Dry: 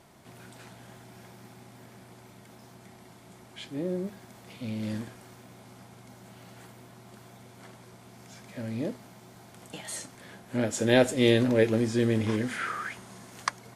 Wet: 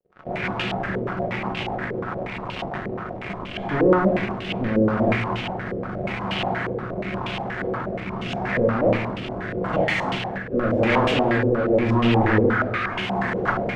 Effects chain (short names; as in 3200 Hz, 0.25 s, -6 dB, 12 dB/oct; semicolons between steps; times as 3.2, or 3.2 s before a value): self-modulated delay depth 0.47 ms; vocal rider within 4 dB 2 s; 9.23–10.35 transient shaper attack +2 dB, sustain +7 dB; fuzz box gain 49 dB, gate -45 dBFS; rotary speaker horn 8 Hz, later 0.85 Hz, at 2.49; reverb RT60 0.90 s, pre-delay 5 ms, DRR 1.5 dB; stepped low-pass 8.4 Hz 480–2900 Hz; gain -8 dB